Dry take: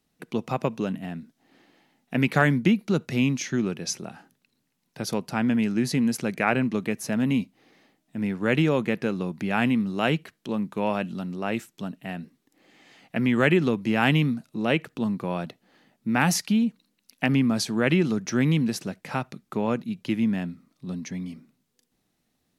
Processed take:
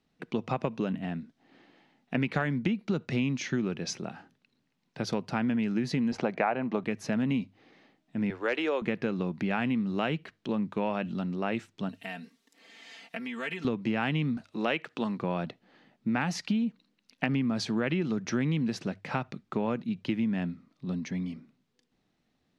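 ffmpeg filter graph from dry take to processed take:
-filter_complex "[0:a]asettb=1/sr,asplit=3[a][b][c];[a]atrim=end=6.124[d];[b]atrim=start=6.12:end=6.84,asetpts=PTS-STARTPTS,afade=t=in:d=0.004:c=qsin,afade=t=out:st=0.716:d=0.004:c=qsin,highpass=120,lowpass=5.9k,equalizer=f=760:w=0.95:g=13[e];[c]atrim=start=6.836[f];[d][e]acrossfade=d=0.004:c1=hsin:c2=qsin[g];[g][f]acrossfade=d=0.004:c1=qsin:c2=hsin,asettb=1/sr,asplit=3[h][i][j];[h]atrim=end=8.304[k];[i]atrim=start=8.3:end=8.82,asetpts=PTS-STARTPTS,afade=t=in:d=0.004:c=qsin,afade=t=out:st=0.516:d=0.004:c=qsin,highpass=f=370:w=0.5412,highpass=f=370:w=1.3066,asoftclip=type=hard:threshold=-15.5dB[l];[j]atrim=start=8.816[m];[k][l]acrossfade=d=0.004:c1=hsin:c2=qsin[n];[n][m]acrossfade=d=0.004:c1=qsin:c2=hsin,asettb=1/sr,asplit=3[o][p][q];[o]atrim=end=11.894[r];[p]atrim=start=11.89:end=13.65,asetpts=PTS-STARTPTS,afade=t=in:d=0.004:c=qsin,afade=t=out:st=1.756:d=0.004:c=qsin,aecho=1:1:4.4:0.9,atrim=end_sample=77616,acompressor=threshold=-32dB:ratio=4:attack=3.2:release=140:knee=1:detection=peak,aemphasis=mode=production:type=riaa[s];[q]atrim=start=13.646[t];[r][s]acrossfade=d=0.004:c1=hsin:c2=qsin[u];[u][t]acrossfade=d=0.004:c1=qsin:c2=hsin,asettb=1/sr,asplit=3[v][w][x];[v]atrim=end=14.374[y];[w]atrim=start=14.37:end=15.18,asetpts=PTS-STARTPTS,afade=t=in:d=0.004:c=qsin,afade=t=out:st=0.806:d=0.004:c=qsin,highpass=f=650:p=1,acontrast=33[z];[x]atrim=start=15.176[aa];[y][z]acrossfade=d=0.004:c1=hsin:c2=qsin[ab];[ab][aa]acrossfade=d=0.004:c1=qsin:c2=hsin,lowpass=4.4k,bandreject=f=50:t=h:w=6,bandreject=f=100:t=h:w=6,acompressor=threshold=-25dB:ratio=6"

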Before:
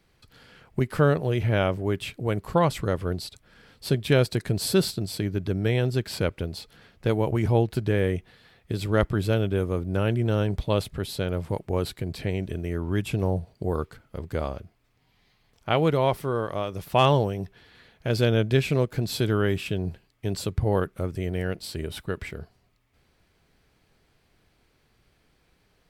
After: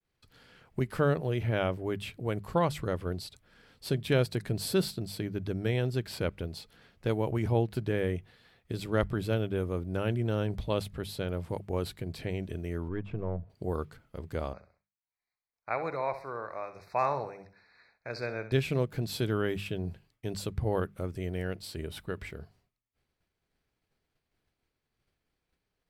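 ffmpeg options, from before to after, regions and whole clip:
-filter_complex "[0:a]asettb=1/sr,asplit=3[a][b][c];[a]atrim=end=12.884[d];[b]atrim=start=12.88:end=13.5,asetpts=PTS-STARTPTS,afade=t=in:d=0.004:c=qsin,afade=t=out:st=0.616:d=0.004:c=qsin,aeval=exprs='if(lt(val(0),0),0.447*val(0),val(0))':c=same,lowpass=1.6k,bandreject=f=800:w=7.6[e];[c]atrim=start=13.496[f];[d][e]acrossfade=d=0.004:c1=hsin:c2=qsin[g];[g][f]acrossfade=d=0.004:c1=qsin:c2=hsin,asettb=1/sr,asplit=3[h][i][j];[h]atrim=end=14.534[k];[i]atrim=start=14.53:end=18.52,asetpts=PTS-STARTPTS,afade=t=in:d=0.004:c=qsin,afade=t=out:st=3.986:d=0.004:c=qsin,asuperstop=centerf=3100:order=12:qfactor=2.4,acrossover=split=580 5500:gain=0.2 1 0.0794[l][m][n];[l][m][n]amix=inputs=3:normalize=0,aecho=1:1:65|130|195|260:0.266|0.101|0.0384|0.0146,atrim=end_sample=175959[o];[j]atrim=start=18.516[p];[k][o]acrossfade=d=0.004:c1=hsin:c2=qsin[q];[q][p]acrossfade=d=0.004:c1=qsin:c2=hsin,agate=range=-33dB:threshold=-56dB:ratio=3:detection=peak,bandreject=f=50:t=h:w=6,bandreject=f=100:t=h:w=6,bandreject=f=150:t=h:w=6,bandreject=f=200:t=h:w=6,adynamicequalizer=threshold=0.00282:dfrequency=6800:dqfactor=1.1:tfrequency=6800:tqfactor=1.1:attack=5:release=100:ratio=0.375:range=2:mode=cutabove:tftype=bell,volume=-5.5dB"

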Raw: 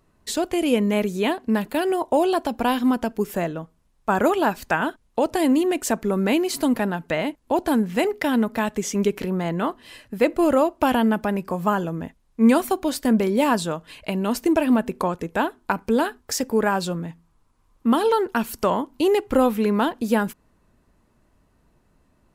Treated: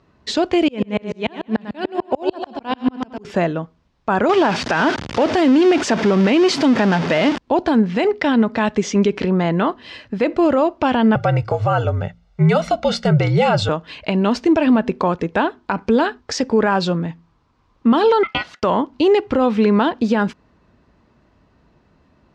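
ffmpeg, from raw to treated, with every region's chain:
-filter_complex "[0:a]asettb=1/sr,asplit=3[a][b][c];[a]atrim=end=0.684[d];[b]atrim=start=0.68:end=3.25,asetpts=PTS-STARTPTS,afade=t=in:d=0.004:c=qsin,afade=t=out:st=2.566:d=0.004:c=qsin,aecho=1:1:98|196|294|392|490|588:0.376|0.199|0.106|0.056|0.0297|0.0157,atrim=end_sample=113337,aeval=exprs='val(0)*pow(10,-38*if(lt(mod(-6.8*n/s,1),2*abs(-6.8)/1000),1-mod(-6.8*n/s,1)/(2*abs(-6.8)/1000),(mod(-6.8*n/s,1)-2*abs(-6.8)/1000)/(1-2*abs(-6.8)/1000))/20)':c=same[e];[c]atrim=start=3.246[f];[d][e]acrossfade=d=0.004:c1=hsin:c2=qsin[g];[g][f]acrossfade=d=0.004:c1=qsin:c2=hsin,asettb=1/sr,asplit=3[h][i][j];[h]atrim=end=4.294[k];[i]atrim=start=4.29:end=7.38,asetpts=PTS-STARTPTS,afade=t=in:d=0.004:c=qsin,afade=t=out:st=3.086:d=0.004:c=qsin,aeval=exprs='val(0)+0.5*0.0708*sgn(val(0))':c=same,highpass=100,bandreject=f=4.1k:w=17[l];[j]atrim=start=7.376[m];[k][l]acrossfade=d=0.004:c1=hsin:c2=qsin[n];[n][m]acrossfade=d=0.004:c1=qsin:c2=hsin,asettb=1/sr,asplit=3[o][p][q];[o]atrim=end=11.154[r];[p]atrim=start=11.15:end=13.69,asetpts=PTS-STARTPTS,afade=t=in:d=0.004:c=qsin,afade=t=out:st=2.536:d=0.004:c=qsin,bandreject=f=60:t=h:w=6,bandreject=f=120:t=h:w=6,bandreject=f=180:t=h:w=6,bandreject=f=240:t=h:w=6,bandreject=f=300:t=h:w=6,aecho=1:1:1.4:0.8,atrim=end_sample=112014,afreqshift=-68[s];[q]atrim=start=13.686[t];[r][s]acrossfade=d=0.004:c1=hsin:c2=qsin[u];[u][t]acrossfade=d=0.004:c1=qsin:c2=hsin,asettb=1/sr,asplit=3[v][w][x];[v]atrim=end=18.234[y];[w]atrim=start=18.23:end=18.63,asetpts=PTS-STARTPTS,afade=t=in:d=0.004:c=qsin,afade=t=out:st=0.396:d=0.004:c=qsin,bass=f=250:g=-12,treble=f=4k:g=-8,agate=range=-33dB:threshold=-49dB:ratio=3:release=100:detection=peak,aeval=exprs='val(0)*sin(2*PI*1700*n/s)':c=same[z];[x]atrim=start=18.626[aa];[y][z]acrossfade=d=0.004:c1=hsin:c2=qsin[ab];[ab][aa]acrossfade=d=0.004:c1=qsin:c2=hsin,highpass=55,alimiter=limit=-14.5dB:level=0:latency=1:release=71,lowpass=f=5.3k:w=0.5412,lowpass=f=5.3k:w=1.3066,volume=7.5dB"

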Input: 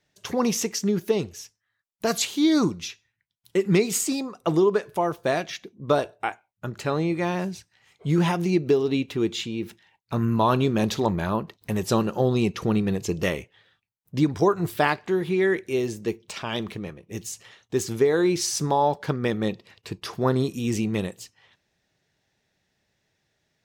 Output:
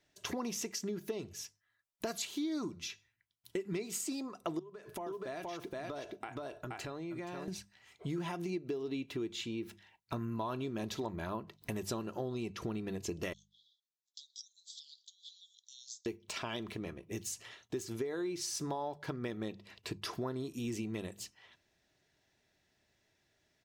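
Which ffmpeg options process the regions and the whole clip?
-filter_complex "[0:a]asettb=1/sr,asplit=3[a][b][c];[a]atrim=end=4.594[d];[b]atrim=start=4.59:end=7.48,asetpts=PTS-STARTPTS,afade=t=in:d=0.004:c=qsin,afade=t=out:st=2.886:d=0.004:c=qsin,aecho=1:1:474:0.668,atrim=end_sample=127449,acompressor=threshold=-35dB:ratio=8:attack=3.2:release=140:knee=1:detection=peak[e];[c]atrim=start=7.476[f];[d][e]acrossfade=d=0.004:c1=hsin:c2=qsin[g];[g][f]acrossfade=d=0.004:c1=qsin:c2=hsin,asettb=1/sr,asplit=3[h][i][j];[h]atrim=end=13.334[k];[i]atrim=start=13.33:end=16.06,asetpts=PTS-STARTPTS,afade=t=in:d=0.004:c=qsin,afade=t=out:st=2.726:d=0.004:c=qsin,acompressor=threshold=-27dB:ratio=6:attack=3.2:release=140:knee=1:detection=peak,asuperpass=centerf=5100:order=20:qfactor=1.2[l];[j]atrim=start=16.056[m];[k][l]acrossfade=d=0.004:c1=hsin:c2=qsin[n];[n][m]acrossfade=d=0.004:c1=qsin:c2=hsin,bandreject=f=50:t=h:w=6,bandreject=f=100:t=h:w=6,bandreject=f=150:t=h:w=6,bandreject=f=200:t=h:w=6,aecho=1:1:3:0.3,acompressor=threshold=-34dB:ratio=5,volume=-2.5dB"

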